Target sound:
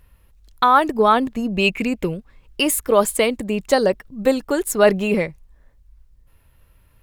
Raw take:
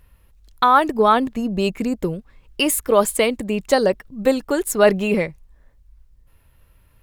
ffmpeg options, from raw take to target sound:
ffmpeg -i in.wav -filter_complex "[0:a]asettb=1/sr,asplit=3[link_01][link_02][link_03];[link_01]atrim=end=1.544[link_04];[link_02]atrim=start=1.54:end=2.14,asetpts=PTS-STARTPTS,afade=type=in:duration=0.004:curve=qsin,afade=type=out:start_time=0.596:duration=0.004:curve=qsin,equalizer=frequency=2500:width=2.1:gain=13[link_05];[link_03]atrim=start=2.136[link_06];[link_04][link_05]acrossfade=duration=0.004:curve1=hsin:curve2=qsin[link_07];[link_07][link_06]acrossfade=duration=0.004:curve1=qsin:curve2=hsin" out.wav

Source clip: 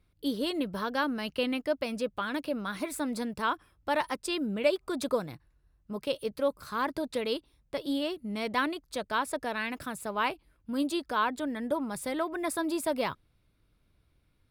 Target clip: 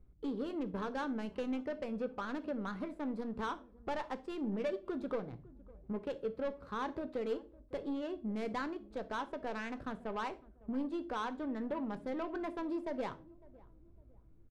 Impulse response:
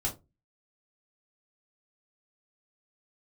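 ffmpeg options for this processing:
-filter_complex "[0:a]aemphasis=mode=production:type=50kf,acompressor=threshold=-46dB:ratio=2,asoftclip=type=tanh:threshold=-34dB,adynamicsmooth=sensitivity=5.5:basefreq=690,asplit=2[link_01][link_02];[link_02]adelay=555,lowpass=frequency=810:poles=1,volume=-21dB,asplit=2[link_03][link_04];[link_04]adelay=555,lowpass=frequency=810:poles=1,volume=0.41,asplit=2[link_05][link_06];[link_06]adelay=555,lowpass=frequency=810:poles=1,volume=0.41[link_07];[link_01][link_03][link_05][link_07]amix=inputs=4:normalize=0,asplit=2[link_08][link_09];[1:a]atrim=start_sample=2205,asetrate=24255,aresample=44100[link_10];[link_09][link_10]afir=irnorm=-1:irlink=0,volume=-16.5dB[link_11];[link_08][link_11]amix=inputs=2:normalize=0,volume=4.5dB"

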